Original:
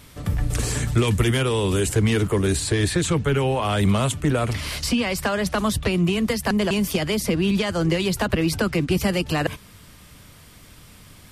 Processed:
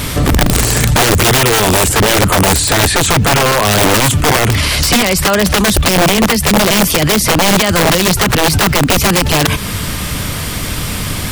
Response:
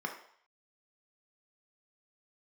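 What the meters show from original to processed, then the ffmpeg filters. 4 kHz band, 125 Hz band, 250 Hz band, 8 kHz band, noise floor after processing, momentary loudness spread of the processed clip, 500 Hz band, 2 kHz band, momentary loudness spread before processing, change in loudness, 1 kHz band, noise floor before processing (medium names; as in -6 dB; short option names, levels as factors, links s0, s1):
+15.5 dB, +8.5 dB, +8.0 dB, +17.0 dB, -20 dBFS, 9 LU, +9.5 dB, +14.5 dB, 4 LU, +11.5 dB, +15.5 dB, -48 dBFS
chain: -filter_complex "[0:a]asplit=2[s0][s1];[s1]acompressor=threshold=0.0355:ratio=12,volume=0.944[s2];[s0][s2]amix=inputs=2:normalize=0,aeval=exprs='0.473*(cos(1*acos(clip(val(0)/0.473,-1,1)))-cos(1*PI/2))+0.0299*(cos(2*acos(clip(val(0)/0.473,-1,1)))-cos(2*PI/2))+0.0133*(cos(4*acos(clip(val(0)/0.473,-1,1)))-cos(4*PI/2))':c=same,aeval=exprs='(mod(5.01*val(0)+1,2)-1)/5.01':c=same,acrusher=bits=9:mix=0:aa=0.000001,alimiter=level_in=20:limit=0.891:release=50:level=0:latency=1,volume=0.631"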